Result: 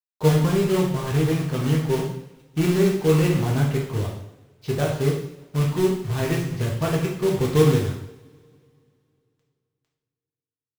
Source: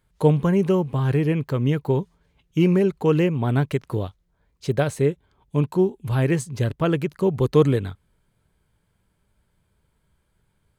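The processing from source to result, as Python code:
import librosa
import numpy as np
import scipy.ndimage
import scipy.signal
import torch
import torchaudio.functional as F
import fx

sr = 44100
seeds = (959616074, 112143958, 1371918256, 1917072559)

y = scipy.signal.sosfilt(scipy.signal.butter(4, 5100.0, 'lowpass', fs=sr, output='sos'), x)
y = fx.quant_companded(y, sr, bits=4)
y = fx.low_shelf(y, sr, hz=150.0, db=7.0)
y = fx.rev_double_slope(y, sr, seeds[0], early_s=0.7, late_s=2.8, knee_db=-26, drr_db=-3.5)
y = y * librosa.db_to_amplitude(-7.5)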